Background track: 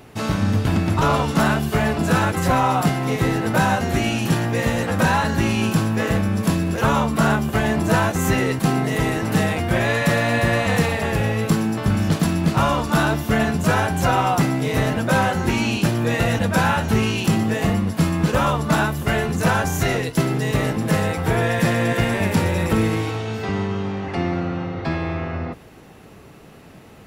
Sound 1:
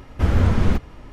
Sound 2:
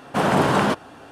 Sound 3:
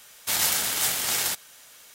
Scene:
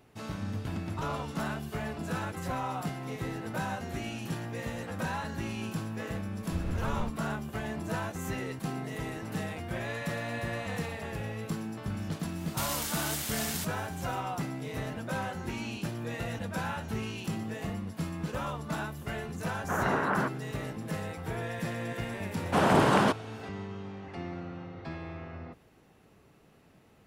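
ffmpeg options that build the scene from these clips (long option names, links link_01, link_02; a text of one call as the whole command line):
ffmpeg -i bed.wav -i cue0.wav -i cue1.wav -i cue2.wav -filter_complex "[2:a]asplit=2[link_01][link_02];[0:a]volume=-16dB[link_03];[3:a]acompressor=threshold=-34dB:ratio=4:attack=33:release=30:knee=1:detection=rms[link_04];[link_01]lowpass=frequency=1600:width_type=q:width=2.5[link_05];[1:a]atrim=end=1.12,asetpts=PTS-STARTPTS,volume=-17dB,afade=type=in:duration=0.004:curve=hsin,afade=type=out:start_time=1.116:duration=0.004:curve=hsin,adelay=6320[link_06];[link_04]atrim=end=1.94,asetpts=PTS-STARTPTS,volume=-4dB,afade=type=in:duration=0.1,afade=type=out:start_time=1.84:duration=0.1,adelay=12300[link_07];[link_05]atrim=end=1.11,asetpts=PTS-STARTPTS,volume=-13dB,afade=type=in:duration=0.004:curve=hsin,afade=type=out:start_time=1.106:duration=0.004:curve=hsin,adelay=19540[link_08];[link_02]atrim=end=1.11,asetpts=PTS-STARTPTS,volume=-4.5dB,afade=type=in:duration=0.004:curve=hsin,afade=type=out:start_time=1.106:duration=0.004:curve=hsin,adelay=22380[link_09];[link_03][link_06][link_07][link_08][link_09]amix=inputs=5:normalize=0" out.wav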